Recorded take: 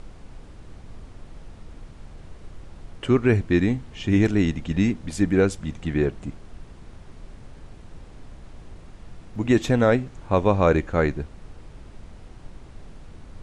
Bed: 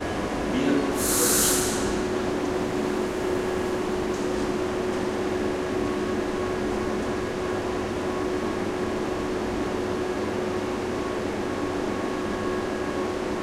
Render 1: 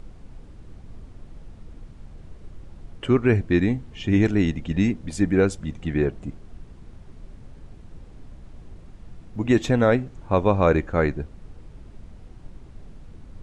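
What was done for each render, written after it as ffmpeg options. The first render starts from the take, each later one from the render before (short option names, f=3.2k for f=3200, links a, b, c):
-af "afftdn=nr=6:nf=-45"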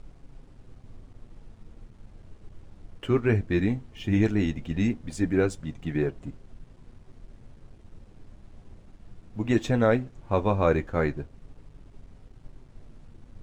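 -af "aeval=exprs='sgn(val(0))*max(abs(val(0))-0.00282,0)':c=same,flanger=delay=7:depth=3.2:regen=-49:speed=0.17:shape=triangular"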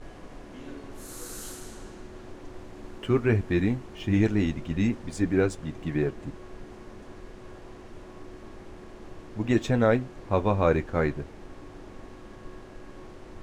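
-filter_complex "[1:a]volume=-19.5dB[a];[0:a][a]amix=inputs=2:normalize=0"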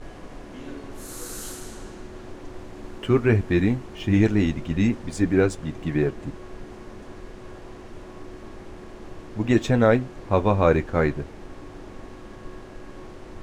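-af "volume=4dB"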